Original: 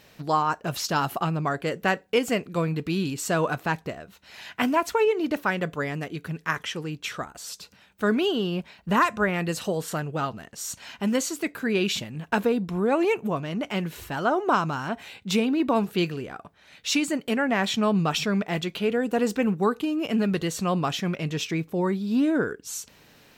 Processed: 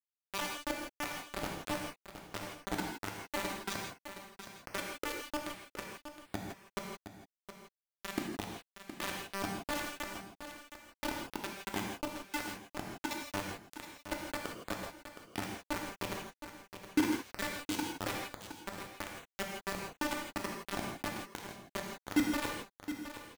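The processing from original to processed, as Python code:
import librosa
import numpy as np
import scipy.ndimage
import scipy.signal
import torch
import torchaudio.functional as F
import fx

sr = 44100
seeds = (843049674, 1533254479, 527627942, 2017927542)

y = fx.vocoder_arp(x, sr, chord='bare fifth', root=55, every_ms=129)
y = fx.hum_notches(y, sr, base_hz=50, count=4)
y = fx.spec_gate(y, sr, threshold_db=-25, keep='strong')
y = fx.high_shelf(y, sr, hz=4400.0, db=4.5)
y = fx.level_steps(y, sr, step_db=18)
y = fx.comb_fb(y, sr, f0_hz=310.0, decay_s=0.2, harmonics='all', damping=0.0, mix_pct=50)
y = fx.chopper(y, sr, hz=3.0, depth_pct=60, duty_pct=40)
y = fx.quant_dither(y, sr, seeds[0], bits=6, dither='none')
y = y + 10.0 ** (-10.5 / 20.0) * np.pad(y, (int(717 * sr / 1000.0), 0))[:len(y)]
y = fx.rev_gated(y, sr, seeds[1], gate_ms=190, shape='flat', drr_db=0.0)
y = F.gain(torch.from_numpy(y), 5.0).numpy()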